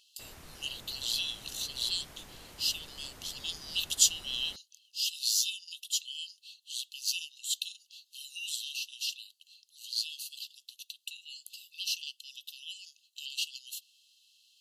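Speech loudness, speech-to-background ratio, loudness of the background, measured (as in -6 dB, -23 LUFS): -33.5 LUFS, 18.0 dB, -51.5 LUFS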